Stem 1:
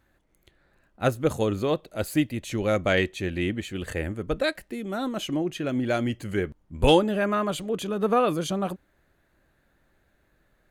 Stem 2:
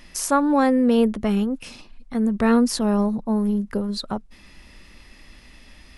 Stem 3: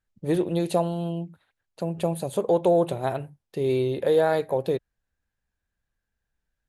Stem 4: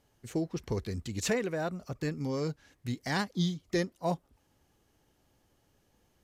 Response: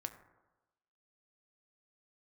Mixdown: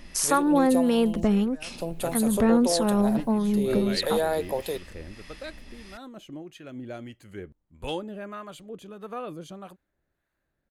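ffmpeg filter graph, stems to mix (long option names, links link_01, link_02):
-filter_complex "[0:a]adelay=1000,volume=-11dB[link_01];[1:a]volume=3dB[link_02];[2:a]aemphasis=mode=production:type=bsi,acrusher=bits=9:mix=0:aa=0.000001,volume=0.5dB[link_03];[3:a]volume=-12dB[link_04];[link_01][link_02][link_03][link_04]amix=inputs=4:normalize=0,acrossover=split=730[link_05][link_06];[link_05]aeval=exprs='val(0)*(1-0.5/2+0.5/2*cos(2*PI*1.6*n/s))':channel_layout=same[link_07];[link_06]aeval=exprs='val(0)*(1-0.5/2-0.5/2*cos(2*PI*1.6*n/s))':channel_layout=same[link_08];[link_07][link_08]amix=inputs=2:normalize=0,acompressor=threshold=-20dB:ratio=2"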